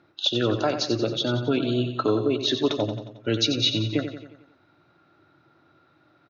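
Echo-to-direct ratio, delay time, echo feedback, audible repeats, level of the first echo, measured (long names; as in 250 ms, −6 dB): −7.5 dB, 90 ms, 53%, 5, −9.0 dB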